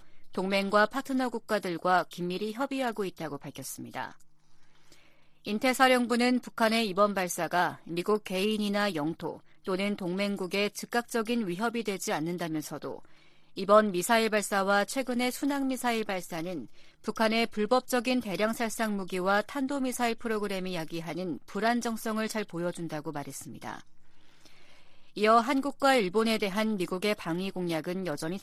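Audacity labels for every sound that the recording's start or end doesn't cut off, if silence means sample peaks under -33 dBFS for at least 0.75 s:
5.470000	23.780000	sound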